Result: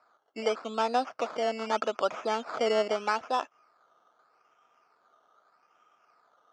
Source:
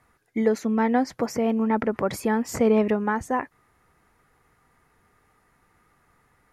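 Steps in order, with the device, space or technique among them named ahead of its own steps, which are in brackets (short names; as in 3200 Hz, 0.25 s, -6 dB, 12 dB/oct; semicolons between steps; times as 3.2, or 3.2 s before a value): circuit-bent sampling toy (decimation with a swept rate 14×, swing 60% 0.81 Hz; speaker cabinet 480–5600 Hz, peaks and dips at 650 Hz +8 dB, 1300 Hz +10 dB, 1900 Hz -9 dB, 3900 Hz -7 dB); gain -4 dB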